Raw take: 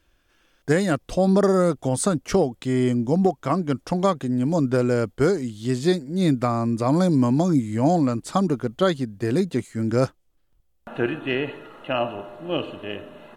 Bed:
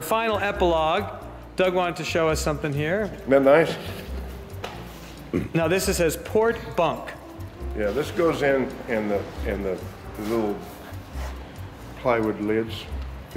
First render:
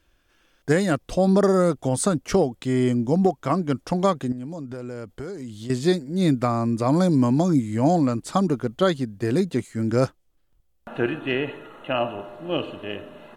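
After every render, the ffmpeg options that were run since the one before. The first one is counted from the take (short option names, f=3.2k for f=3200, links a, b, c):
-filter_complex "[0:a]asettb=1/sr,asplit=3[a][b][c];[a]atrim=end=4.324[d];[b]atrim=start=4.32:end=5.7,asetpts=PTS-STARTPTS,afade=t=in:d=0.004:c=qsin,afade=t=out:st=1.376:d=0.004:c=qsin,acompressor=threshold=-31dB:ratio=6:attack=3.2:release=140:knee=1:detection=peak[e];[c]atrim=start=5.696[f];[d][e]acrossfade=d=0.004:c1=hsin:c2=qsin[g];[g][f]acrossfade=d=0.004:c1=qsin:c2=hsin,asettb=1/sr,asplit=3[h][i][j];[h]atrim=end=11.324[k];[i]atrim=start=11.32:end=12.2,asetpts=PTS-STARTPTS,afade=t=in:d=0.004:c=qsin,afade=t=out:st=0.876:d=0.004:c=qsin,asuperstop=centerf=4900:order=4:qfactor=3.2[l];[j]atrim=start=12.196[m];[k][l]acrossfade=d=0.004:c1=hsin:c2=qsin[n];[n][m]acrossfade=d=0.004:c1=qsin:c2=hsin"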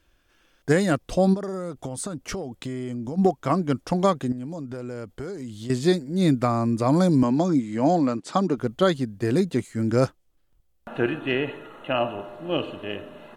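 -filter_complex "[0:a]asplit=3[a][b][c];[a]afade=t=out:st=1.33:d=0.02[d];[b]acompressor=threshold=-27dB:ratio=12:attack=3.2:release=140:knee=1:detection=peak,afade=t=in:st=1.33:d=0.02,afade=t=out:st=3.17:d=0.02[e];[c]afade=t=in:st=3.17:d=0.02[f];[d][e][f]amix=inputs=3:normalize=0,asettb=1/sr,asplit=3[g][h][i];[g]atrim=end=7.234[j];[h]atrim=start=7.23:end=8.58,asetpts=PTS-STARTPTS,afade=t=in:d=0.004:c=qsin,afade=t=out:st=1.346:d=0.004:c=qsin,highpass=190,lowpass=6.5k[k];[i]atrim=start=8.576[l];[j][k]acrossfade=d=0.004:c1=hsin:c2=qsin[m];[m][l]acrossfade=d=0.004:c1=qsin:c2=hsin"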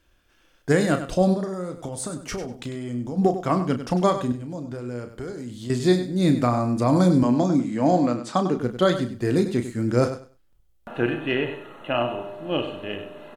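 -filter_complex "[0:a]asplit=2[a][b];[b]adelay=33,volume=-9dB[c];[a][c]amix=inputs=2:normalize=0,aecho=1:1:98|196|294:0.282|0.0535|0.0102"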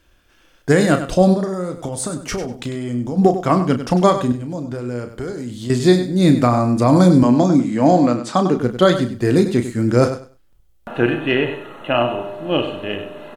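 -af "volume=6.5dB,alimiter=limit=-2dB:level=0:latency=1"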